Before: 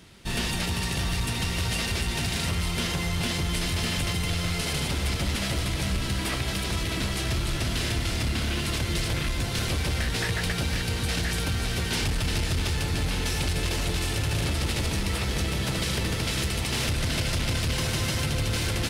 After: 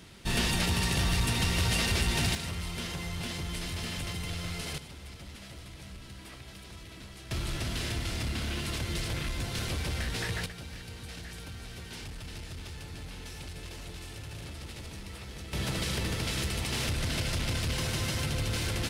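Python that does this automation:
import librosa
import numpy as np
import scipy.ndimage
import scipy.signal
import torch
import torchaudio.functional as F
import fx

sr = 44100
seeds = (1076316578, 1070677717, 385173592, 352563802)

y = fx.gain(x, sr, db=fx.steps((0.0, 0.0), (2.35, -8.5), (4.78, -18.5), (7.31, -6.0), (10.46, -15.5), (15.53, -4.5)))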